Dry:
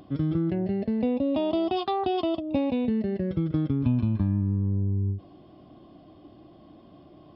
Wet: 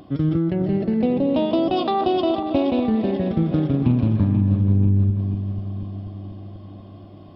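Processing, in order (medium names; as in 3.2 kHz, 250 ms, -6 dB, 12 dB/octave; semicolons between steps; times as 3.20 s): backward echo that repeats 243 ms, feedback 72%, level -9.5 dB; loudspeaker Doppler distortion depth 0.16 ms; trim +5 dB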